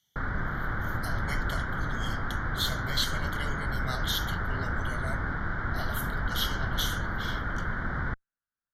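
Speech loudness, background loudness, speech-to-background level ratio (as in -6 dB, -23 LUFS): -36.0 LUFS, -32.5 LUFS, -3.5 dB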